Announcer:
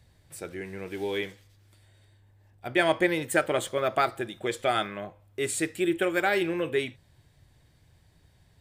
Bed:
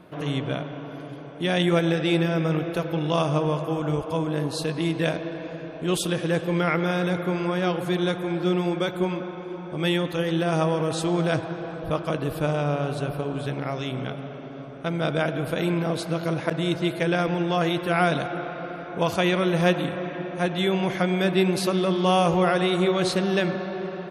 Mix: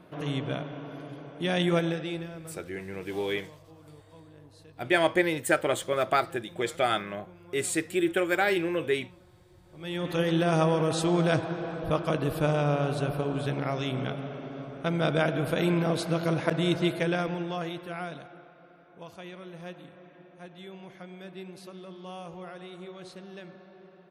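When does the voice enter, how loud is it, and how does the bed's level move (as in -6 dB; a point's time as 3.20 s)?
2.15 s, 0.0 dB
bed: 1.79 s -4 dB
2.70 s -26.5 dB
9.62 s -26.5 dB
10.12 s -1 dB
16.83 s -1 dB
18.54 s -21.5 dB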